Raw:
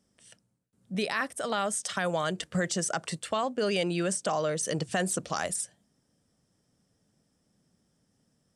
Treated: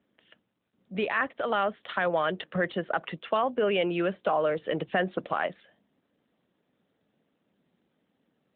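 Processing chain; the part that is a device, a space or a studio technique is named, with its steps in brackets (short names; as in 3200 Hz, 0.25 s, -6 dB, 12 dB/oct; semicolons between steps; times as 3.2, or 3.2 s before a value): telephone (BPF 250–3200 Hz; gain +4 dB; AMR-NB 12.2 kbps 8000 Hz)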